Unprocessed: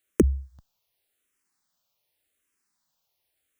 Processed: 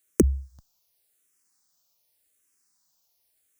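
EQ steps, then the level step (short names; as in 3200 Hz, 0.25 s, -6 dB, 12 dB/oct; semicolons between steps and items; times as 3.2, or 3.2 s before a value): resonant high shelf 4300 Hz +7 dB, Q 1.5; 0.0 dB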